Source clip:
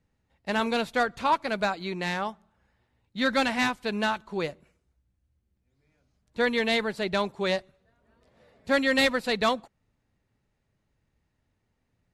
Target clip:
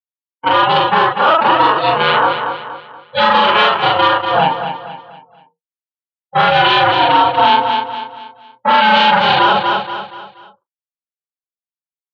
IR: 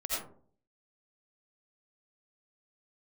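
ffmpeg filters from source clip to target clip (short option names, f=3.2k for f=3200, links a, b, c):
-af "afftfilt=real='re':imag='-im':win_size=4096:overlap=0.75,bandreject=f=50:t=h:w=6,bandreject=f=100:t=h:w=6,bandreject=f=150:t=h:w=6,bandreject=f=200:t=h:w=6,bandreject=f=250:t=h:w=6,afftdn=nr=34:nf=-43,agate=range=-33dB:threshold=-46dB:ratio=3:detection=peak,acontrast=51,aeval=exprs='val(0)*sin(2*PI*320*n/s)':c=same,aresample=16000,asoftclip=type=hard:threshold=-22.5dB,aresample=44100,highpass=f=160:w=0.5412,highpass=f=160:w=1.3066,equalizer=f=160:t=q:w=4:g=-4,equalizer=f=250:t=q:w=4:g=-9,equalizer=f=920:t=q:w=4:g=9,equalizer=f=1.4k:t=q:w=4:g=5,equalizer=f=2.1k:t=q:w=4:g=-8,equalizer=f=3k:t=q:w=4:g=9,lowpass=f=3.8k:w=0.5412,lowpass=f=3.8k:w=1.3066,aecho=1:1:238|476|714|952:0.316|0.123|0.0481|0.0188,alimiter=level_in=20dB:limit=-1dB:release=50:level=0:latency=1,volume=-1dB"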